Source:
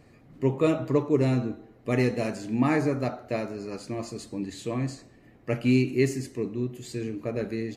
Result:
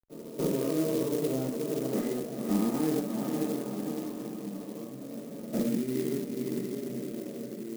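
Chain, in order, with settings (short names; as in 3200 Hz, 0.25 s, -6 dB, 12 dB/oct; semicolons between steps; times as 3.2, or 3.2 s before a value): spectral swells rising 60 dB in 2.27 s; level quantiser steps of 23 dB; steep high-pass 190 Hz 36 dB/oct; diffused feedback echo 0.515 s, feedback 50%, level -11 dB; compressor 6:1, threshold -31 dBFS, peak gain reduction 10.5 dB; reverb, pre-delay 96 ms; crackle 29/s -58 dBFS; LPF 2200 Hz; tilt -4.5 dB/oct; clock jitter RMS 0.075 ms; gain +7.5 dB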